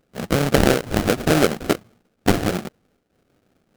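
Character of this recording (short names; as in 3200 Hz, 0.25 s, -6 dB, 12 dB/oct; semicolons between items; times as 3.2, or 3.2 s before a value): aliases and images of a low sample rate 1000 Hz, jitter 20%; noise-modulated level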